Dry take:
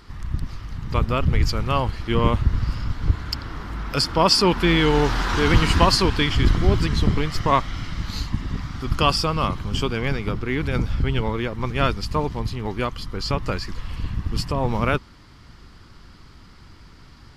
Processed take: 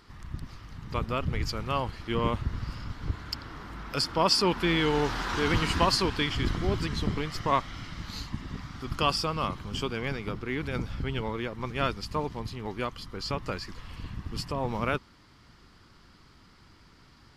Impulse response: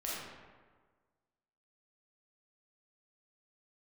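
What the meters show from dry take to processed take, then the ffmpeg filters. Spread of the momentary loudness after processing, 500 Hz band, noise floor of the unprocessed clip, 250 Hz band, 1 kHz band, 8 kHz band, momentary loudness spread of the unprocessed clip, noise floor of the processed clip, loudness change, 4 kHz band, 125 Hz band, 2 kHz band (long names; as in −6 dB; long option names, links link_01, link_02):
15 LU, −7.0 dB, −47 dBFS, −8.0 dB, −6.5 dB, −6.5 dB, 13 LU, −57 dBFS, −7.5 dB, −6.5 dB, −10.5 dB, −6.5 dB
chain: -af "lowshelf=frequency=98:gain=-8.5,volume=-6.5dB"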